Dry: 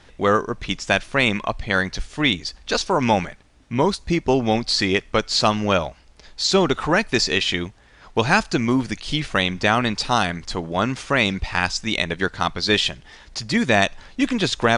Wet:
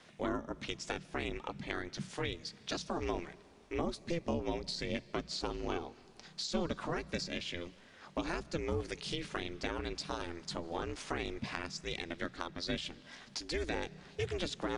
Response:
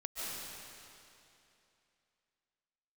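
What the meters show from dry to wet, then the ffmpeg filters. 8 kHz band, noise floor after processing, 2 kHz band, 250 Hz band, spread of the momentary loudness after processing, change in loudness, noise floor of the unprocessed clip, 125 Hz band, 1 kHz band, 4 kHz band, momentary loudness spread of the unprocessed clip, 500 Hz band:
−17.0 dB, −59 dBFS, −20.5 dB, −17.5 dB, 6 LU, −18.0 dB, −51 dBFS, −17.0 dB, −19.5 dB, −18.5 dB, 8 LU, −16.0 dB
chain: -filter_complex "[0:a]aeval=exprs='val(0)*sin(2*PI*170*n/s)':channel_layout=same,bass=frequency=250:gain=-10,treble=frequency=4000:gain=1,acrossover=split=310[link_01][link_02];[link_02]acompressor=threshold=-33dB:ratio=10[link_03];[link_01][link_03]amix=inputs=2:normalize=0,bandreject=frequency=60:width_type=h:width=6,bandreject=frequency=120:width_type=h:width=6,bandreject=frequency=180:width_type=h:width=6,asplit=2[link_04][link_05];[1:a]atrim=start_sample=2205[link_06];[link_05][link_06]afir=irnorm=-1:irlink=0,volume=-22.5dB[link_07];[link_04][link_07]amix=inputs=2:normalize=0,volume=-4.5dB"

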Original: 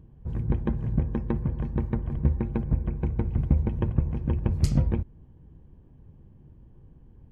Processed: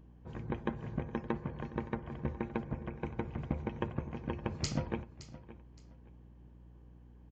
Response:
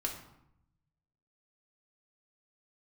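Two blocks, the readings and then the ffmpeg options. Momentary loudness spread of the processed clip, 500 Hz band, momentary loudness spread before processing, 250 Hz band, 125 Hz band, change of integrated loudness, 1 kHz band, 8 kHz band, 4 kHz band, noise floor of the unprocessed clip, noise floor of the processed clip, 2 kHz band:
20 LU, −3.5 dB, 5 LU, −8.5 dB, −14.5 dB, −11.5 dB, 0.0 dB, can't be measured, +2.5 dB, −53 dBFS, −56 dBFS, +2.0 dB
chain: -af "highpass=frequency=780:poles=1,aeval=exprs='val(0)+0.00126*(sin(2*PI*60*n/s)+sin(2*PI*2*60*n/s)/2+sin(2*PI*3*60*n/s)/3+sin(2*PI*4*60*n/s)/4+sin(2*PI*5*60*n/s)/5)':channel_layout=same,aecho=1:1:568|1136:0.15|0.0374,aresample=16000,aresample=44100,volume=2.5dB"

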